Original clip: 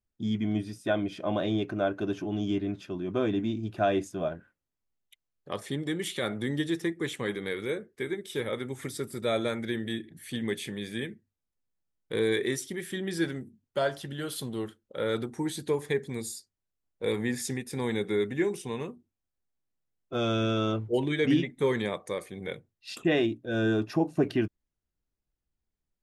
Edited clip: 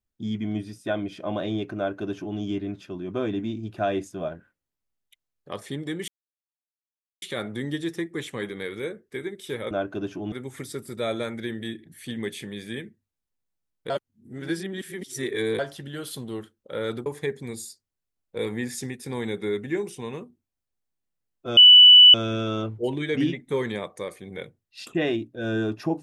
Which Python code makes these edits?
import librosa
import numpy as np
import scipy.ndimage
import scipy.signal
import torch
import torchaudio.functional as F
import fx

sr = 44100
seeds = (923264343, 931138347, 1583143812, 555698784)

y = fx.edit(x, sr, fx.duplicate(start_s=1.77, length_s=0.61, to_s=8.57),
    fx.insert_silence(at_s=6.08, length_s=1.14),
    fx.reverse_span(start_s=12.15, length_s=1.69),
    fx.cut(start_s=15.31, length_s=0.42),
    fx.insert_tone(at_s=20.24, length_s=0.57, hz=2970.0, db=-7.0), tone=tone)